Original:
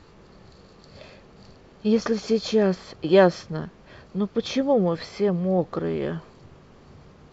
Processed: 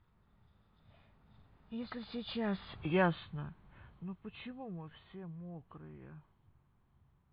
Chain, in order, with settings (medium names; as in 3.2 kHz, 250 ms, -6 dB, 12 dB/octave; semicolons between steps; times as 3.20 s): knee-point frequency compression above 1.9 kHz 1.5:1; Doppler pass-by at 2.82 s, 24 m/s, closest 7.6 m; FFT filter 110 Hz 0 dB, 510 Hz -16 dB, 860 Hz -4 dB; in parallel at +2 dB: compression, threshold -52 dBFS, peak gain reduction 27 dB; on the sum: tape noise reduction on one side only decoder only; trim -3 dB